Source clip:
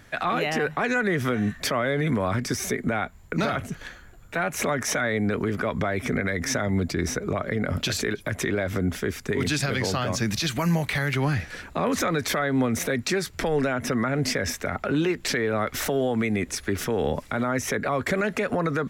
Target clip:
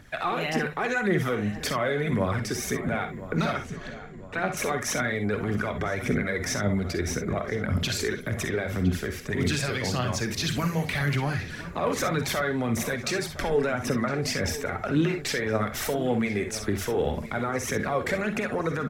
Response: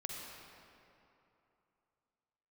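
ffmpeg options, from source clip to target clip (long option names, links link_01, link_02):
-filter_complex "[0:a]asettb=1/sr,asplit=3[link_01][link_02][link_03];[link_01]atrim=end=3.534[link_04];[link_02]atrim=start=3.53:end=4.57,asetpts=PTS-STARTPTS,afade=type=in:duration=0.004:curve=qsin,afade=type=out:start_time=1.036:duration=0.004:curve=qsin,lowpass=6900[link_05];[link_03]atrim=start=4.566[link_06];[link_04][link_05]acrossfade=duration=0.004:curve1=hsin:curve2=qsin[link_07];[link_07][link_06]acrossfade=duration=0.004:curve1=qsin:curve2=hsin,aphaser=in_gain=1:out_gain=1:delay=2.7:decay=0.47:speed=1.8:type=triangular,asplit=2[link_08][link_09];[link_09]adelay=1012,lowpass=frequency=2400:poles=1,volume=-14dB,asplit=2[link_10][link_11];[link_11]adelay=1012,lowpass=frequency=2400:poles=1,volume=0.53,asplit=2[link_12][link_13];[link_13]adelay=1012,lowpass=frequency=2400:poles=1,volume=0.53,asplit=2[link_14][link_15];[link_15]adelay=1012,lowpass=frequency=2400:poles=1,volume=0.53,asplit=2[link_16][link_17];[link_17]adelay=1012,lowpass=frequency=2400:poles=1,volume=0.53[link_18];[link_08][link_10][link_12][link_14][link_16][link_18]amix=inputs=6:normalize=0[link_19];[1:a]atrim=start_sample=2205,atrim=end_sample=3087[link_20];[link_19][link_20]afir=irnorm=-1:irlink=0"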